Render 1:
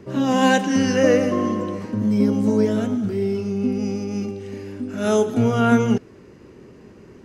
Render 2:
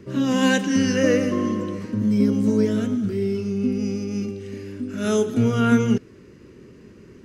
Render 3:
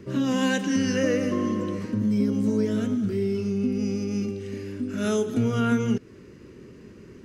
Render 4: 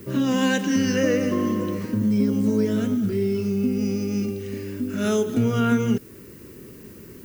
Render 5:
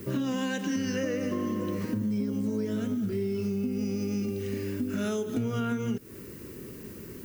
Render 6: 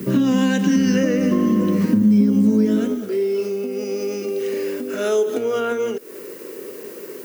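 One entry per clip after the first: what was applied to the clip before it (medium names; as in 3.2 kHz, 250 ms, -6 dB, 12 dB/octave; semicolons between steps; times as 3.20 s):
peaking EQ 770 Hz -11 dB 0.81 oct
compression 2:1, threshold -23 dBFS, peak gain reduction 6.5 dB
added noise violet -53 dBFS; trim +2.5 dB
compression, threshold -27 dBFS, peak gain reduction 11.5 dB
high-pass sweep 180 Hz -> 470 Hz, 2.57–3.07 s; trim +8.5 dB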